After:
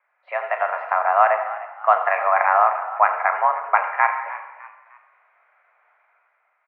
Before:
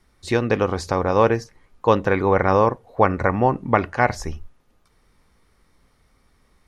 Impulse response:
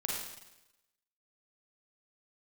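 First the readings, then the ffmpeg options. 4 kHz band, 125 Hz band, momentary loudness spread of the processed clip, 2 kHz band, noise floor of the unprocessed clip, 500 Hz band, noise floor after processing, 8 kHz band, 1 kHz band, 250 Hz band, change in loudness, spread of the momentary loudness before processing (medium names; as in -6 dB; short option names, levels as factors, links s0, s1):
under -10 dB, under -40 dB, 12 LU, +3.5 dB, -62 dBFS, -5.0 dB, -69 dBFS, no reading, +4.5 dB, under -40 dB, +0.5 dB, 6 LU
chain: -filter_complex "[0:a]highpass=f=510:t=q:w=0.5412,highpass=f=510:t=q:w=1.307,lowpass=f=2100:t=q:w=0.5176,lowpass=f=2100:t=q:w=0.7071,lowpass=f=2100:t=q:w=1.932,afreqshift=190,asplit=2[s0][s1];[1:a]atrim=start_sample=2205,adelay=35[s2];[s1][s2]afir=irnorm=-1:irlink=0,volume=0.316[s3];[s0][s3]amix=inputs=2:normalize=0,dynaudnorm=f=110:g=11:m=2.51,asplit=4[s4][s5][s6][s7];[s5]adelay=303,afreqshift=55,volume=0.158[s8];[s6]adelay=606,afreqshift=110,volume=0.0569[s9];[s7]adelay=909,afreqshift=165,volume=0.0207[s10];[s4][s8][s9][s10]amix=inputs=4:normalize=0,volume=0.891"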